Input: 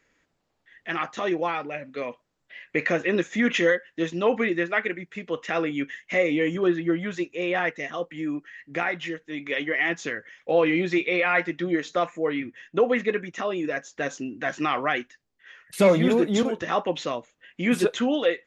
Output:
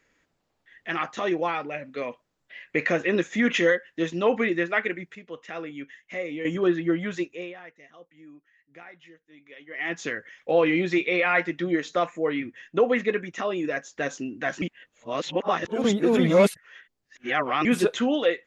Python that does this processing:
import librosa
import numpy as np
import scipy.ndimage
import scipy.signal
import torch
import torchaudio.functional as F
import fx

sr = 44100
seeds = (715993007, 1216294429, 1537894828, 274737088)

y = fx.edit(x, sr, fx.clip_gain(start_s=5.15, length_s=1.3, db=-9.5),
    fx.fade_down_up(start_s=7.2, length_s=2.83, db=-19.5, fade_s=0.35),
    fx.reverse_span(start_s=14.62, length_s=3.03), tone=tone)